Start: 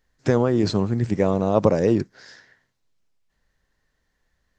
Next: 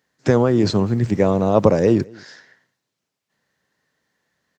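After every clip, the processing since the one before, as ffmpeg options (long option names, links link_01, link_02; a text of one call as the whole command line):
ffmpeg -i in.wav -filter_complex "[0:a]acrossover=split=110[link_01][link_02];[link_01]aeval=exprs='val(0)*gte(abs(val(0)),0.00447)':channel_layout=same[link_03];[link_03][link_02]amix=inputs=2:normalize=0,asplit=2[link_04][link_05];[link_05]adelay=209.9,volume=-26dB,highshelf=frequency=4000:gain=-4.72[link_06];[link_04][link_06]amix=inputs=2:normalize=0,volume=3.5dB" out.wav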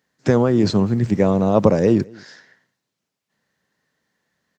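ffmpeg -i in.wav -af "equalizer=frequency=200:width_type=o:width=0.66:gain=3.5,volume=-1dB" out.wav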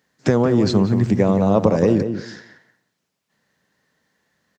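ffmpeg -i in.wav -filter_complex "[0:a]acompressor=threshold=-20dB:ratio=2,asplit=2[link_01][link_02];[link_02]adelay=176,lowpass=frequency=1700:poles=1,volume=-8dB,asplit=2[link_03][link_04];[link_04]adelay=176,lowpass=frequency=1700:poles=1,volume=0.18,asplit=2[link_05][link_06];[link_06]adelay=176,lowpass=frequency=1700:poles=1,volume=0.18[link_07];[link_01][link_03][link_05][link_07]amix=inputs=4:normalize=0,volume=4dB" out.wav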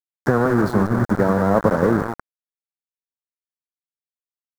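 ffmpeg -i in.wav -af "aeval=exprs='val(0)*gte(abs(val(0)),0.126)':channel_layout=same,highshelf=frequency=2000:width_type=q:width=3:gain=-10.5,volume=-1.5dB" out.wav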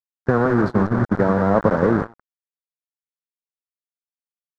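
ffmpeg -i in.wav -af "agate=range=-21dB:threshold=-20dB:ratio=16:detection=peak,lowpass=4200" out.wav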